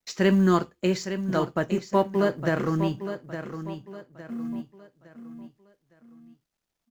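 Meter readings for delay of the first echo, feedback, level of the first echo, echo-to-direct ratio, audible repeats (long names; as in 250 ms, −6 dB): 861 ms, 36%, −10.0 dB, −9.5 dB, 3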